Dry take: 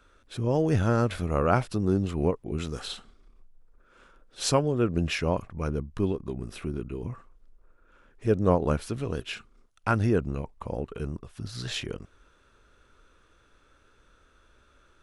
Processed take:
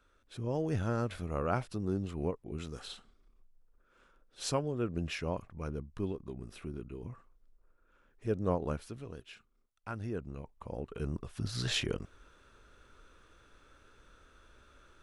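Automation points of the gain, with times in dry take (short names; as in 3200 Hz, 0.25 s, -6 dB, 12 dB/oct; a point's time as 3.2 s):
8.64 s -9 dB
9.25 s -16 dB
9.92 s -16 dB
10.85 s -7 dB
11.25 s +0.5 dB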